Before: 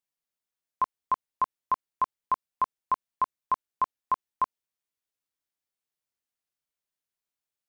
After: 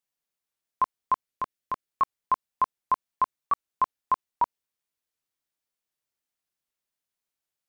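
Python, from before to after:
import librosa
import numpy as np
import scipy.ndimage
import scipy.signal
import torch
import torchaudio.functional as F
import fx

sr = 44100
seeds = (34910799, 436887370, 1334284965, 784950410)

y = fx.peak_eq(x, sr, hz=930.0, db=-9.0, octaves=0.64, at=(1.27, 1.88))
y = fx.record_warp(y, sr, rpm=78.0, depth_cents=160.0)
y = y * librosa.db_to_amplitude(2.0)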